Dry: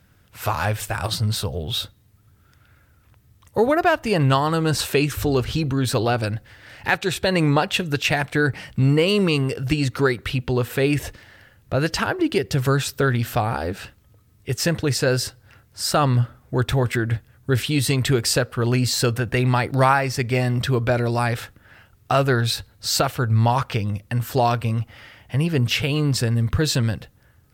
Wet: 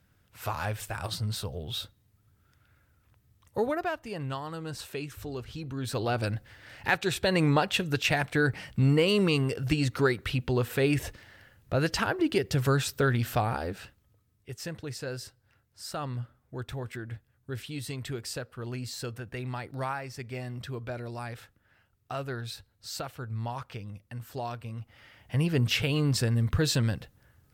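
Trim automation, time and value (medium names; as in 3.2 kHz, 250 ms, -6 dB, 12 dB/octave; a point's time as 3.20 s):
3.61 s -9.5 dB
4.11 s -17 dB
5.53 s -17 dB
6.27 s -5.5 dB
13.45 s -5.5 dB
14.56 s -16.5 dB
24.71 s -16.5 dB
25.36 s -5.5 dB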